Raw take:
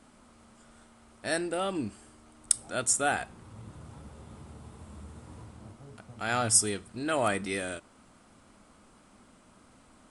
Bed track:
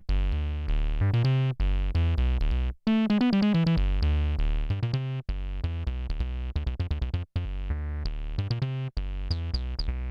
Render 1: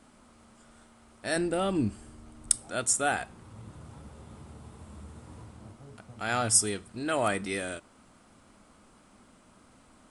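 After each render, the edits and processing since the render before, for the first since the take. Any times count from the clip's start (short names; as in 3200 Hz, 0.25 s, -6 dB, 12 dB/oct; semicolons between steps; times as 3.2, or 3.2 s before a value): 1.36–2.56 low shelf 250 Hz +11.5 dB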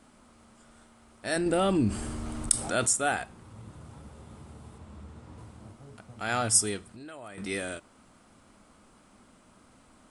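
1.46–2.89 fast leveller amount 50%; 4.78–5.38 air absorption 57 m; 6.83–7.38 compressor 4:1, threshold -44 dBFS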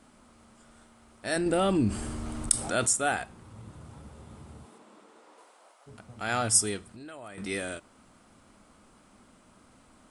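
4.64–5.86 HPF 210 Hz -> 650 Hz 24 dB/oct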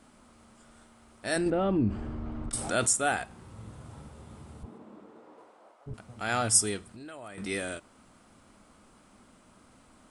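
1.5–2.53 tape spacing loss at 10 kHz 37 dB; 3.26–4.08 flutter echo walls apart 8 m, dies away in 0.4 s; 4.63–5.94 tilt -4 dB/oct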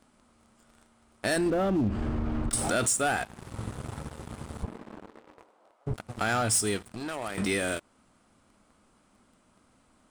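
sample leveller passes 3; compressor 3:1, threshold -27 dBFS, peak gain reduction 10.5 dB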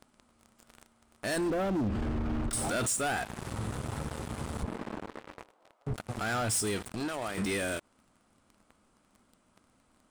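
sample leveller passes 2; limiter -26.5 dBFS, peak gain reduction 10 dB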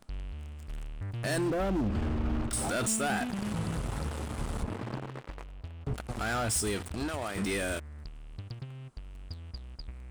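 add bed track -13 dB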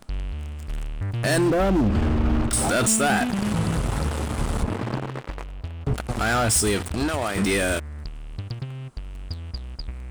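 gain +9.5 dB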